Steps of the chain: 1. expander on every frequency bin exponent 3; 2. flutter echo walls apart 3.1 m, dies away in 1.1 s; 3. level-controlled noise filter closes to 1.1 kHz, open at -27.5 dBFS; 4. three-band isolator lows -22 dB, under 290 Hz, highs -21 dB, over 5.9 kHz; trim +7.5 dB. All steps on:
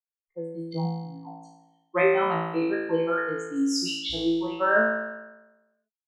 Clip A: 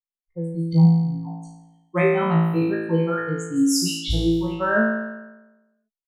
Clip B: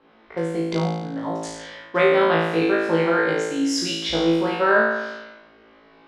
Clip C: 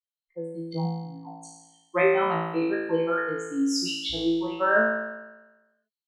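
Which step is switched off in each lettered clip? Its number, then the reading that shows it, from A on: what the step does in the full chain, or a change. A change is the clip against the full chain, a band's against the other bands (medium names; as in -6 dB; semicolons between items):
4, 125 Hz band +14.0 dB; 1, momentary loudness spread change -5 LU; 3, momentary loudness spread change +1 LU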